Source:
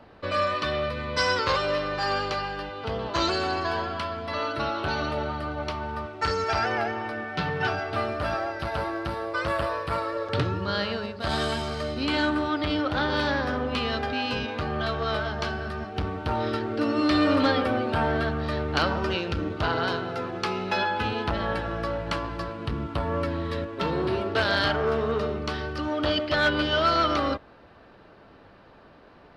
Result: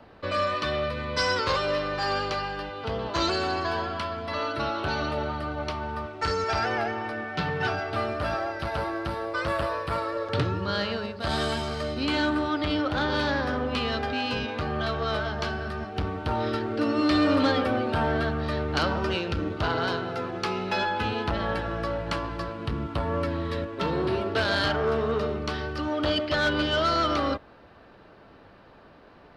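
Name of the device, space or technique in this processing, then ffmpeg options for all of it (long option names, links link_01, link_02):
one-band saturation: -filter_complex "[0:a]acrossover=split=550|3700[link_01][link_02][link_03];[link_02]asoftclip=type=tanh:threshold=-20.5dB[link_04];[link_01][link_04][link_03]amix=inputs=3:normalize=0"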